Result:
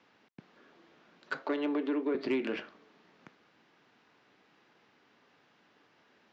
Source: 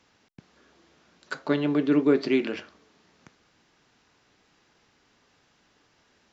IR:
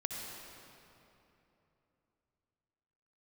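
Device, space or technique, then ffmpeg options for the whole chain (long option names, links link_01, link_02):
AM radio: -filter_complex "[0:a]highpass=170,lowpass=3300,acompressor=threshold=-25dB:ratio=6,asoftclip=type=tanh:threshold=-22dB,asettb=1/sr,asplit=3[link_01][link_02][link_03];[link_01]atrim=end=1.434[link_04];[link_02]atrim=start=1.43:end=2.15,asetpts=PTS-STARTPTS,afade=type=in:duration=0.004:curve=qsin,afade=type=out:start_time=0.716:duration=0.004:curve=qsin,highpass=frequency=270:width=0.5412,highpass=frequency=270:width=1.3066[link_05];[link_03]atrim=start=2.146[link_06];[link_04][link_05]acrossfade=duration=0.004:curve1=hsin:curve2=qsin[link_07];[link_07][link_06]acrossfade=duration=0.004:curve1=qsin:curve2=hsin"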